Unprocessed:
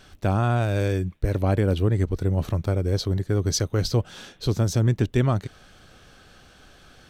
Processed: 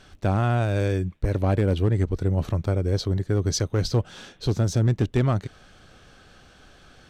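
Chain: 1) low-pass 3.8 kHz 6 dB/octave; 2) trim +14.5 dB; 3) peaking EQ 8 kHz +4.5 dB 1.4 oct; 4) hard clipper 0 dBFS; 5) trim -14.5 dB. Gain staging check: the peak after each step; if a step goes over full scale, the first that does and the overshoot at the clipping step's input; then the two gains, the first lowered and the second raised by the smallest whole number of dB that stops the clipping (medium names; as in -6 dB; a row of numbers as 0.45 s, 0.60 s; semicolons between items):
-10.5 dBFS, +4.0 dBFS, +4.0 dBFS, 0.0 dBFS, -14.5 dBFS; step 2, 4.0 dB; step 2 +10.5 dB, step 5 -10.5 dB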